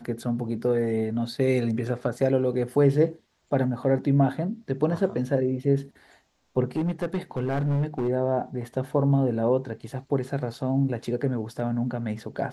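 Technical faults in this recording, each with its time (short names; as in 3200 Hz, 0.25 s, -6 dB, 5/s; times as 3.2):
6.76–8.09 clipped -21.5 dBFS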